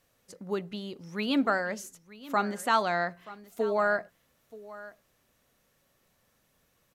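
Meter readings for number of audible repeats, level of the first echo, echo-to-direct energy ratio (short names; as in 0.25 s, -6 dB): 1, -18.0 dB, -18.0 dB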